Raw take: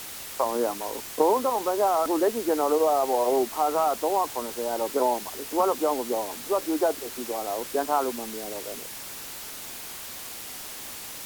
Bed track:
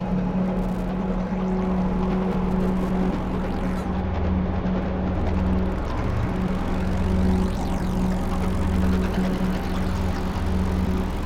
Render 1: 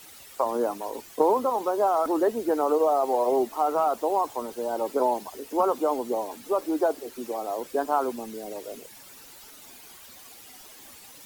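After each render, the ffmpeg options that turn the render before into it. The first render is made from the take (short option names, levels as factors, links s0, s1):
-af "afftdn=nr=12:nf=-39"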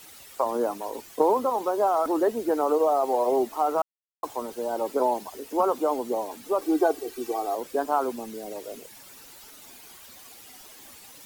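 -filter_complex "[0:a]asettb=1/sr,asplit=3[s0][s1][s2];[s0]atrim=end=6.614[s3];[s1]atrim=start=6.61:end=7.55,asetpts=PTS-STARTPTS,afade=t=in:d=0.004:c=qsin,afade=t=out:st=0.936:d=0.004:c=qsin,aecho=1:1:2.6:0.8,atrim=end_sample=41454[s4];[s2]atrim=start=7.546[s5];[s3][s4]acrossfade=d=0.004:c1=hsin:c2=qsin[s6];[s6][s5]acrossfade=d=0.004:c1=qsin:c2=hsin,asplit=3[s7][s8][s9];[s7]atrim=end=3.82,asetpts=PTS-STARTPTS,afade=t=out:st=3.816:d=0.004:c=hsin[s10];[s8]atrim=start=3.82:end=4.23,asetpts=PTS-STARTPTS,volume=0[s11];[s9]atrim=start=4.23,asetpts=PTS-STARTPTS,afade=t=in:d=0.004:c=hsin[s12];[s10][s11][s12]concat=n=3:v=0:a=1"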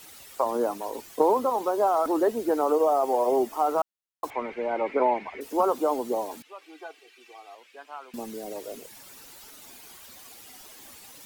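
-filter_complex "[0:a]asettb=1/sr,asplit=3[s0][s1][s2];[s0]atrim=end=2.714[s3];[s1]atrim=start=2.71:end=3.62,asetpts=PTS-STARTPTS,afade=t=in:d=0.004:c=qsin,afade=t=out:st=0.906:d=0.004:c=qsin,bandreject=f=4000:w=9[s4];[s2]atrim=start=3.616[s5];[s3][s4]acrossfade=d=0.004:c1=hsin:c2=qsin[s6];[s6][s5]acrossfade=d=0.004:c1=qsin:c2=hsin,asettb=1/sr,asplit=3[s7][s8][s9];[s7]atrim=end=4.304[s10];[s8]atrim=start=4.3:end=5.41,asetpts=PTS-STARTPTS,afade=t=in:d=0.004:c=qsin,afade=t=out:st=1.106:d=0.004:c=qsin,lowpass=f=2200:t=q:w=10[s11];[s9]atrim=start=5.406[s12];[s10][s11]acrossfade=d=0.004:c1=hsin:c2=qsin[s13];[s13][s12]acrossfade=d=0.004:c1=qsin:c2=hsin,asettb=1/sr,asplit=3[s14][s15][s16];[s14]atrim=end=6.424[s17];[s15]atrim=start=6.42:end=8.14,asetpts=PTS-STARTPTS,afade=t=in:d=0.004:c=qsin,afade=t=out:st=1.716:d=0.004:c=qsin,bandpass=f=2500:t=q:w=2.6[s18];[s16]atrim=start=8.136[s19];[s17][s18]acrossfade=d=0.004:c1=hsin:c2=qsin[s20];[s20][s19]acrossfade=d=0.004:c1=qsin:c2=hsin"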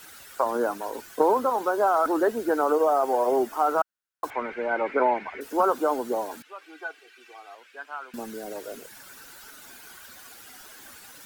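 -af "equalizer=f=1500:t=o:w=0.39:g=12.5"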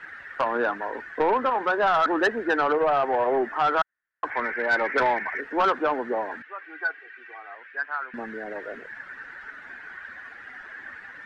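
-af "lowpass=f=1800:t=q:w=7.9,asoftclip=type=tanh:threshold=0.178"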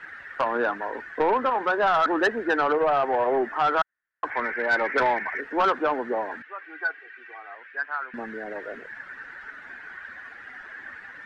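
-af anull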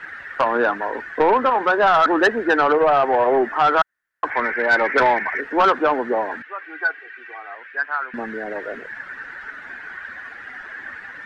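-af "volume=2"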